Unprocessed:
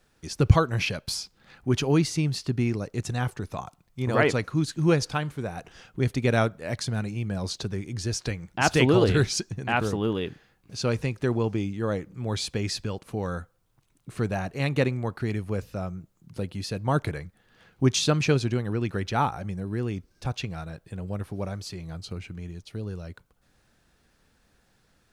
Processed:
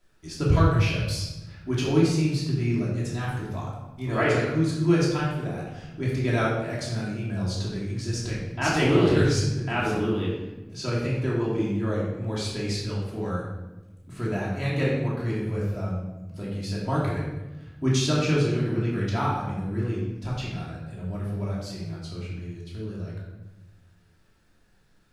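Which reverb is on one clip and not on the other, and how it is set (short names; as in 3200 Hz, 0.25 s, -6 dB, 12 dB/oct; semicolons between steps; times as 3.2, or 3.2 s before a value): shoebox room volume 540 m³, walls mixed, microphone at 2.9 m; gain -8 dB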